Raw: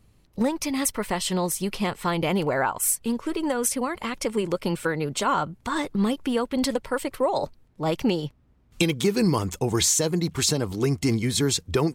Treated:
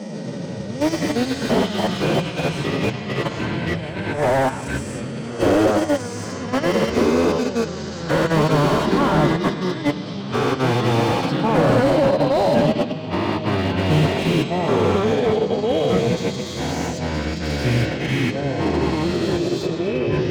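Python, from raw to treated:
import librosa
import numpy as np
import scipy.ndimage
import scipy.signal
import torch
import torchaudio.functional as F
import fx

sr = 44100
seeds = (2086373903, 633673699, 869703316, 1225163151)

p1 = fx.spec_swells(x, sr, rise_s=2.86)
p2 = fx.peak_eq(p1, sr, hz=190.0, db=13.5, octaves=1.3)
p3 = fx.over_compress(p2, sr, threshold_db=-18.0, ratio=-1.0)
p4 = fx.cabinet(p3, sr, low_hz=110.0, low_slope=12, high_hz=6800.0, hz=(130.0, 220.0, 620.0, 1900.0, 3100.0, 4700.0), db=(3, -4, 8, 5, 7, 7))
p5 = p4 + fx.echo_feedback(p4, sr, ms=71, feedback_pct=41, wet_db=-13, dry=0)
p6 = fx.level_steps(p5, sr, step_db=15)
p7 = fx.hum_notches(p6, sr, base_hz=60, count=4)
p8 = fx.stretch_vocoder(p7, sr, factor=1.7)
p9 = fx.echo_pitch(p8, sr, ms=131, semitones=-4, count=3, db_per_echo=-3.0)
y = fx.slew_limit(p9, sr, full_power_hz=130.0)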